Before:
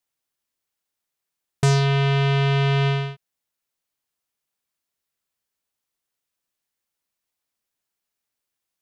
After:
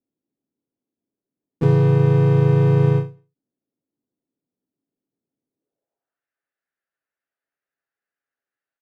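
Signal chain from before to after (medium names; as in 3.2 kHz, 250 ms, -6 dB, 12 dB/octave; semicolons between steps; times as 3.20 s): local Wiener filter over 41 samples; gate with hold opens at -25 dBFS; comb 7.3 ms, depth 43%; waveshaping leveller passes 1; band-pass sweep 270 Hz -> 1.7 kHz, 5.55–6.23 s; power-law waveshaper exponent 0.7; harmony voices -4 st -8 dB, +3 st -6 dB; delay 174 ms -17.5 dB; endings held to a fixed fall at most 180 dB/s; trim +6 dB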